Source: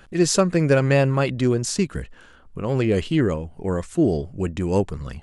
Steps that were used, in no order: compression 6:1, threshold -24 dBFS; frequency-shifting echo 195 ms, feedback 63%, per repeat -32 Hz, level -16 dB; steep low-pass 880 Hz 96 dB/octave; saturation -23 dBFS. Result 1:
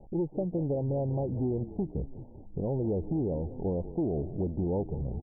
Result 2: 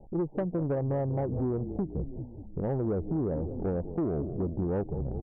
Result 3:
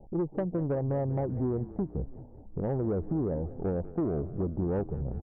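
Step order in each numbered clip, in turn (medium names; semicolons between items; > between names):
compression > frequency-shifting echo > saturation > steep low-pass; steep low-pass > frequency-shifting echo > compression > saturation; compression > steep low-pass > saturation > frequency-shifting echo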